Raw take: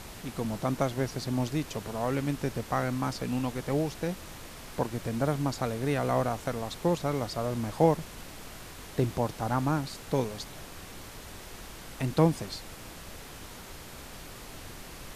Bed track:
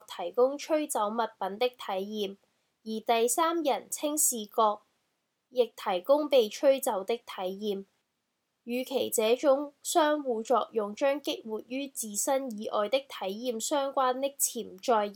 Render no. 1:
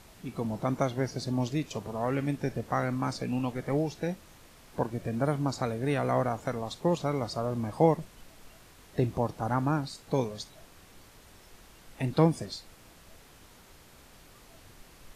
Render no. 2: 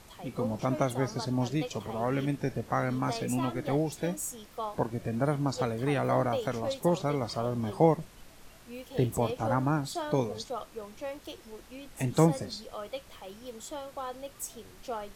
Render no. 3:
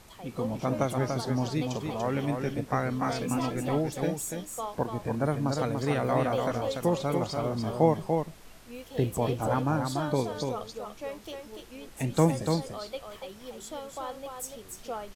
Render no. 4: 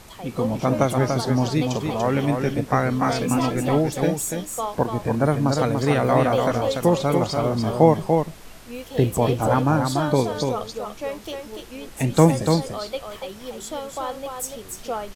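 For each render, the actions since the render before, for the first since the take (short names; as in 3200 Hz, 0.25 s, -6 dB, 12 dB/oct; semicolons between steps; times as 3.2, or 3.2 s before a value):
noise print and reduce 10 dB
add bed track -11 dB
echo 0.29 s -5 dB
gain +8 dB; limiter -2 dBFS, peak gain reduction 0.5 dB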